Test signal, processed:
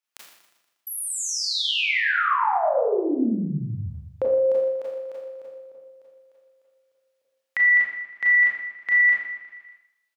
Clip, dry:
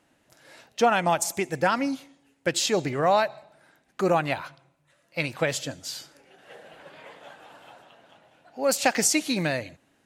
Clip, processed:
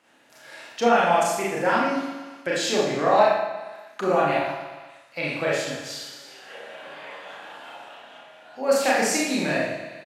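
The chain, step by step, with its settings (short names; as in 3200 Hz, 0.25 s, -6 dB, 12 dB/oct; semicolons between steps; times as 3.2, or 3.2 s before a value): HPF 230 Hz 6 dB/oct; high shelf 4600 Hz -10 dB; on a send: feedback echo 0.119 s, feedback 51%, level -12.5 dB; on the sum: Schroeder reverb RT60 0.66 s, combs from 27 ms, DRR -6 dB; mismatched tape noise reduction encoder only; gain -3 dB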